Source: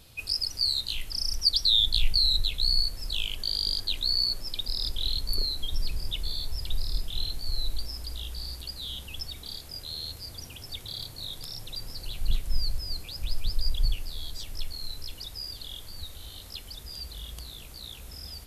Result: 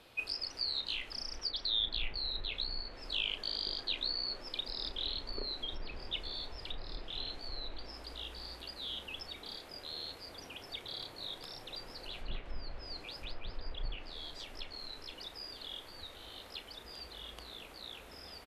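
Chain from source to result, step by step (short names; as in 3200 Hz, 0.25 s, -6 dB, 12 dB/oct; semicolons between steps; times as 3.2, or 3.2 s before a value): treble ducked by the level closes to 2700 Hz, closed at -19.5 dBFS; three-band isolator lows -18 dB, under 260 Hz, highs -16 dB, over 3100 Hz; doubler 34 ms -12.5 dB; gain +2.5 dB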